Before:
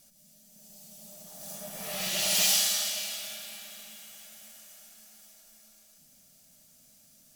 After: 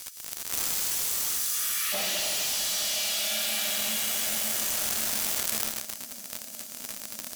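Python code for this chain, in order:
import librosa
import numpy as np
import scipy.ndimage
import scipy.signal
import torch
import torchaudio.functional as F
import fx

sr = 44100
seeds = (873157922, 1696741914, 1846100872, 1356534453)

y = fx.ellip_highpass(x, sr, hz=fx.steps((0.0, 1200.0), (1.92, 210.0)), order=4, stop_db=40)
y = fx.leveller(y, sr, passes=5)
y = fx.env_flatten(y, sr, amount_pct=100)
y = y * 10.0 ** (-13.0 / 20.0)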